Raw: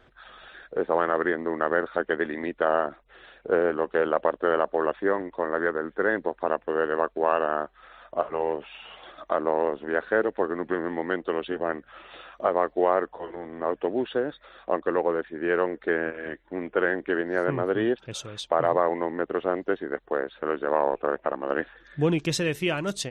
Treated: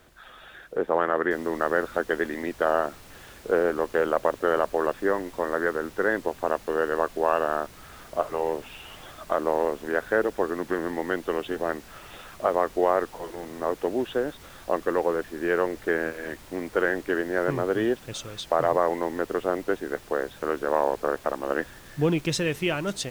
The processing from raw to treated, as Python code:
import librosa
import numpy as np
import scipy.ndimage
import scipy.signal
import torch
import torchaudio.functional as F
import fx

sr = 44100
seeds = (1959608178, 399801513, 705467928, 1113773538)

y = fx.noise_floor_step(x, sr, seeds[0], at_s=1.31, before_db=-61, after_db=-48, tilt_db=3.0)